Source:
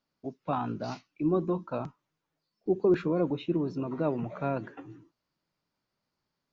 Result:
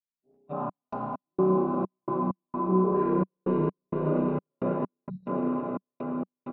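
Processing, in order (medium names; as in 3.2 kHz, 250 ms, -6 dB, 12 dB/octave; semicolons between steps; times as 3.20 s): coarse spectral quantiser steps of 15 dB; echo with a slow build-up 108 ms, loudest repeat 8, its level -8 dB; spring tank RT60 3.2 s, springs 32 ms, chirp 30 ms, DRR -9.5 dB; spectral selection erased 5.07–5.27 s, 220–3800 Hz; comb 5 ms, depth 41%; gate -27 dBFS, range -25 dB; chorus voices 2, 0.48 Hz, delay 17 ms, depth 4.9 ms; trance gate "xxx.x.xx.x." 65 bpm -60 dB; peaking EQ 190 Hz +3.5 dB 0.37 oct; low-pass that closes with the level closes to 1.4 kHz, closed at -27.5 dBFS; trim -5.5 dB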